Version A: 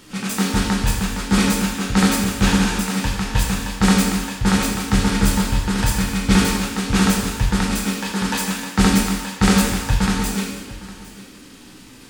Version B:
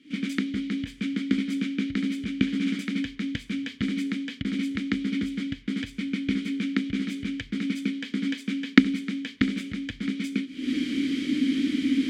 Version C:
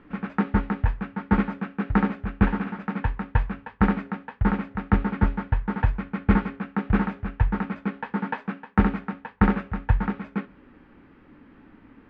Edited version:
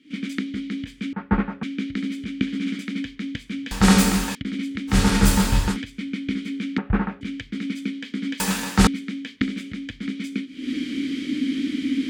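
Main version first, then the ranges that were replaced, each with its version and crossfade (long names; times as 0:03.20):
B
0:01.13–0:01.63: punch in from C
0:03.71–0:04.35: punch in from A
0:04.92–0:05.73: punch in from A, crossfade 0.10 s
0:06.78–0:07.21: punch in from C
0:08.40–0:08.87: punch in from A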